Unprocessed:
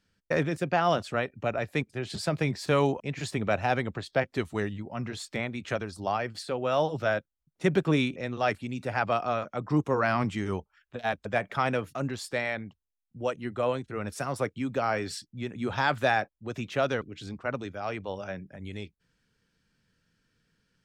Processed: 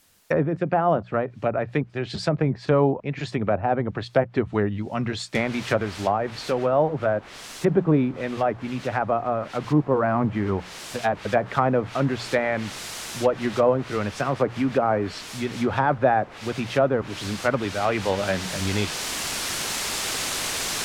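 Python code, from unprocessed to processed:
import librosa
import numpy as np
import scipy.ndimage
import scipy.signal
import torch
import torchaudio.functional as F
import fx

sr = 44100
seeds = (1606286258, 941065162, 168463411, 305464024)

y = fx.noise_floor_step(x, sr, seeds[0], at_s=5.35, before_db=-65, after_db=-40, tilt_db=0.0)
y = fx.env_lowpass_down(y, sr, base_hz=1000.0, full_db=-24.0)
y = fx.hum_notches(y, sr, base_hz=60, count=3)
y = fx.rider(y, sr, range_db=10, speed_s=2.0)
y = y * librosa.db_to_amplitude(6.5)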